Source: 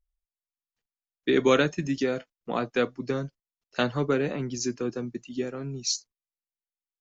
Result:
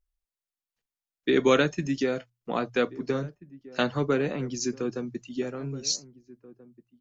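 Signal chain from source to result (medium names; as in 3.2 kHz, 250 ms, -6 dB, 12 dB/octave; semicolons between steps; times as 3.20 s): hum notches 60/120 Hz; echo from a far wall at 280 m, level -19 dB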